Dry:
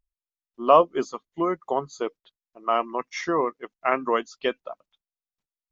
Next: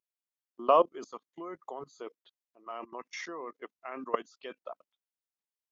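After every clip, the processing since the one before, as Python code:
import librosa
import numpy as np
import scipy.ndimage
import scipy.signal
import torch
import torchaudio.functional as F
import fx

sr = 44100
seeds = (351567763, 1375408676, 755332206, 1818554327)

y = scipy.signal.sosfilt(scipy.signal.butter(2, 240.0, 'highpass', fs=sr, output='sos'), x)
y = fx.level_steps(y, sr, step_db=20)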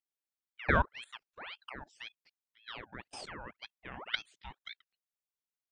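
y = fx.ring_lfo(x, sr, carrier_hz=1700.0, swing_pct=75, hz=1.9)
y = F.gain(torch.from_numpy(y), -2.0).numpy()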